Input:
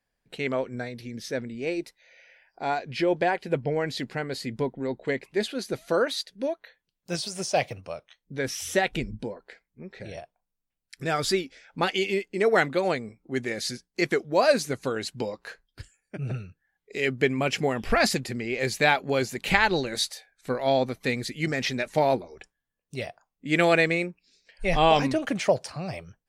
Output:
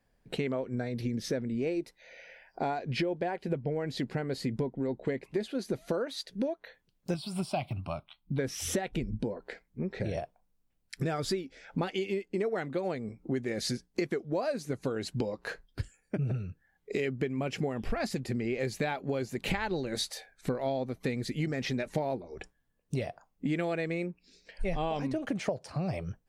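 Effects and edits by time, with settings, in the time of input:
7.14–8.39 fixed phaser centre 1800 Hz, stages 6
whole clip: tilt shelf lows +5 dB, about 830 Hz; compressor 12:1, threshold -35 dBFS; gain +6.5 dB

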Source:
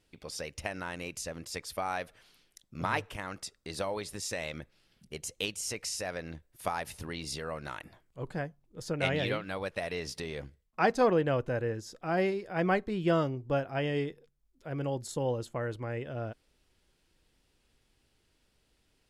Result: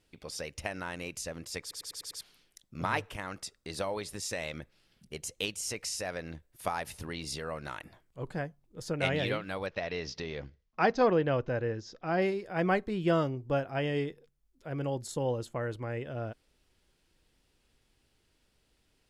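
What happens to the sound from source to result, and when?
1.61 stutter in place 0.10 s, 6 plays
9.66–12.22 steep low-pass 6200 Hz 48 dB/oct

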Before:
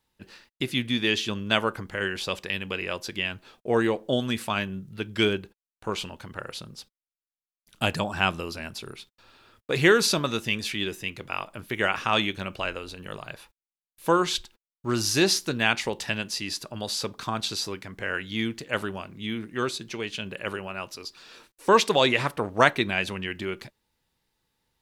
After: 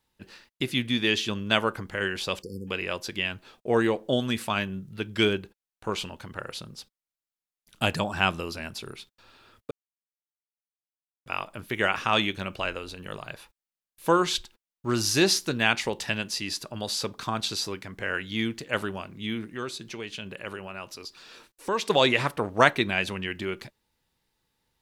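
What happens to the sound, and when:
2.42–2.68 spectral delete 550–4400 Hz
9.71–11.26 mute
19.5–21.9 compressor 1.5:1, threshold -39 dBFS

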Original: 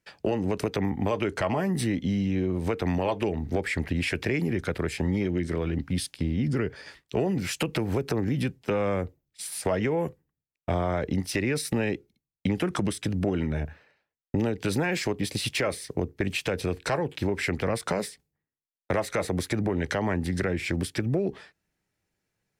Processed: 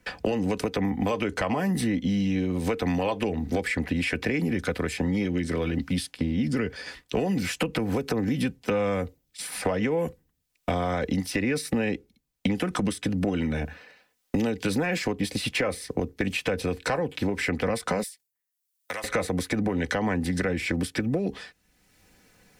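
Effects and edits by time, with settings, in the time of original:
18.03–19.04 differentiator
whole clip: comb 4 ms, depth 46%; three-band squash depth 70%

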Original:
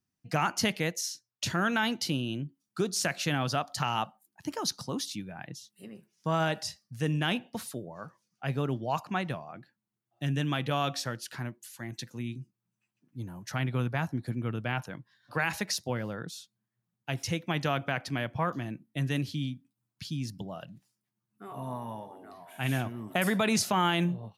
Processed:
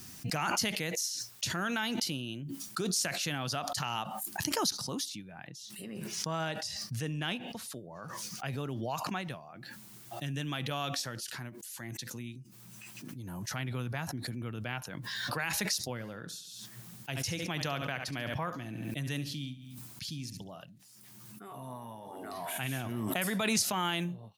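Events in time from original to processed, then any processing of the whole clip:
5.09–8.06 high shelf 7600 Hz -8 dB
15.93–20.64 feedback echo 70 ms, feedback 34%, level -13.5 dB
whole clip: high shelf 3000 Hz +9 dB; backwards sustainer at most 20 dB/s; gain -7.5 dB

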